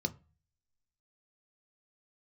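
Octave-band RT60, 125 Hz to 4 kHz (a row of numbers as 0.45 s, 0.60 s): 0.60 s, 0.40 s, 0.30 s, 0.35 s, 0.35 s, 0.25 s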